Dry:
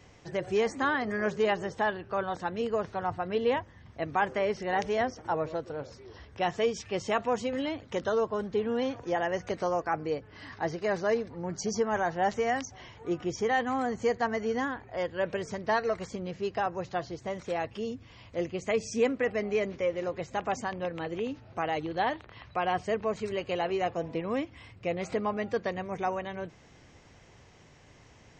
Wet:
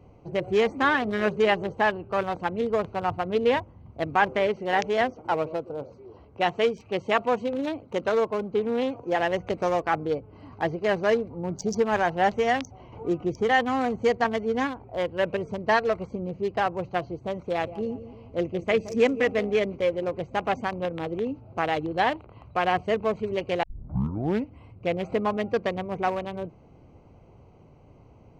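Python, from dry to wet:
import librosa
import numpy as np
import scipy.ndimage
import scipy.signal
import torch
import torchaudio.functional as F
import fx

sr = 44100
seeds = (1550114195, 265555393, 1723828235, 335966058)

y = fx.highpass(x, sr, hz=170.0, slope=6, at=(4.47, 9.2))
y = fx.band_squash(y, sr, depth_pct=40, at=(12.92, 13.49))
y = fx.band_widen(y, sr, depth_pct=100, at=(14.24, 14.8))
y = fx.echo_feedback(y, sr, ms=171, feedback_pct=48, wet_db=-13, at=(17.58, 19.51), fade=0.02)
y = fx.edit(y, sr, fx.tape_start(start_s=23.63, length_s=0.93), tone=tone)
y = fx.wiener(y, sr, points=25)
y = fx.dynamic_eq(y, sr, hz=2400.0, q=0.84, threshold_db=-47.0, ratio=4.0, max_db=4)
y = F.gain(torch.from_numpy(y), 5.0).numpy()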